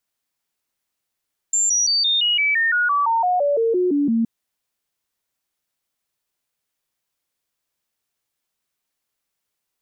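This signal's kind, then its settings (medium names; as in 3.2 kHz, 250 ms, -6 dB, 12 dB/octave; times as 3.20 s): stepped sine 7.3 kHz down, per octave 3, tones 16, 0.17 s, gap 0.00 s -15.5 dBFS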